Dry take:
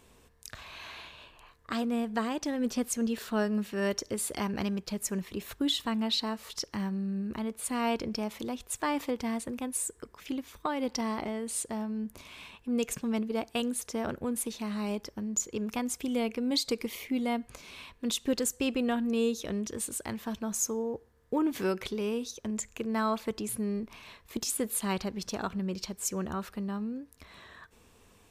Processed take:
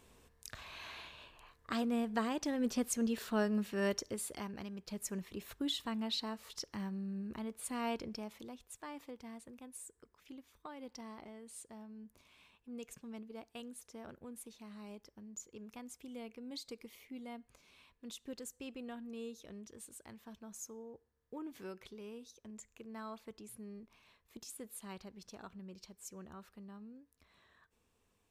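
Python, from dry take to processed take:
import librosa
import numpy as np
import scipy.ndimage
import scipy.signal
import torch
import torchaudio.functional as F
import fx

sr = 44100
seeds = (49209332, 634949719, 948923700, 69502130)

y = fx.gain(x, sr, db=fx.line((3.89, -4.0), (4.7, -14.5), (4.96, -8.0), (7.92, -8.0), (8.85, -17.0)))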